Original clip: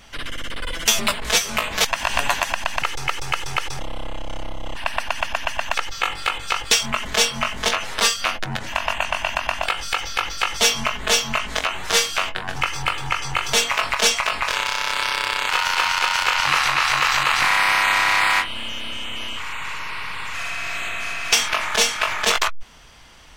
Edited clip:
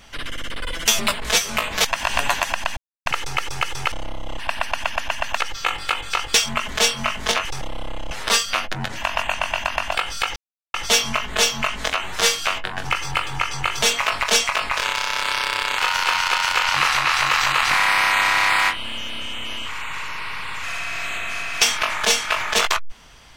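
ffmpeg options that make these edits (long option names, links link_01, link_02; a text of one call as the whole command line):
ffmpeg -i in.wav -filter_complex "[0:a]asplit=7[link_01][link_02][link_03][link_04][link_05][link_06][link_07];[link_01]atrim=end=2.77,asetpts=PTS-STARTPTS,afade=type=out:start_time=2.766:duration=0.004:curve=hsin,apad=pad_dur=0.29[link_08];[link_02]atrim=start=2.77:end=3.632,asetpts=PTS-STARTPTS,afade=type=in:duration=0.004:curve=hsin[link_09];[link_03]atrim=start=4.288:end=7.822[link_10];[link_04]atrim=start=3.628:end=4.292[link_11];[link_05]atrim=start=7.818:end=10.07,asetpts=PTS-STARTPTS,afade=type=out:start_time=2.248:duration=0.004:curve=hsin[link_12];[link_06]atrim=start=10.07:end=10.45,asetpts=PTS-STARTPTS,volume=0[link_13];[link_07]atrim=start=10.45,asetpts=PTS-STARTPTS,afade=type=in:duration=0.004:curve=hsin[link_14];[link_08][link_09]concat=n=2:v=0:a=1[link_15];[link_15][link_10]acrossfade=duration=0.004:curve1=hsin:curve2=hsin[link_16];[link_16][link_11]acrossfade=duration=0.004:curve1=hsin:curve2=hsin[link_17];[link_12][link_13][link_14]concat=n=3:v=0:a=1[link_18];[link_17][link_18]acrossfade=duration=0.004:curve1=hsin:curve2=hsin" out.wav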